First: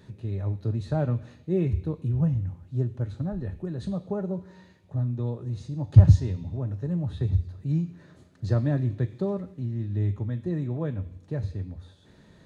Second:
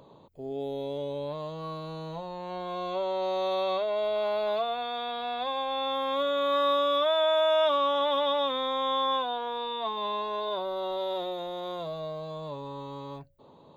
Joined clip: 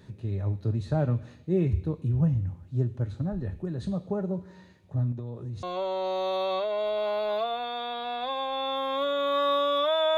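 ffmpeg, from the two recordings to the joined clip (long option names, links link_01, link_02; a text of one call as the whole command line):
ffmpeg -i cue0.wav -i cue1.wav -filter_complex "[0:a]asettb=1/sr,asplit=3[link_01][link_02][link_03];[link_01]atrim=end=5.124[link_04];[link_02]atrim=start=5.12:end=5.63,asetpts=PTS-STARTPTS,afade=type=in:duration=0.004:curve=qsin,afade=type=out:start_time=0.506:duration=0.004:curve=qsin,acompressor=threshold=-32dB:ratio=6:attack=3.2:release=140:knee=1:detection=peak[link_05];[link_03]atrim=start=5.626[link_06];[link_04][link_05]acrossfade=duration=0.004:curve1=hsin:curve2=qsin[link_07];[link_07][link_06]acrossfade=duration=0.004:curve1=qsin:curve2=hsin,apad=whole_dur=10.17,atrim=end=10.17,atrim=end=5.632[link_08];[1:a]atrim=start=2.808:end=7.35[link_09];[link_08][link_09]acrossfade=duration=0.004:curve1=hsin:curve2=hsin" out.wav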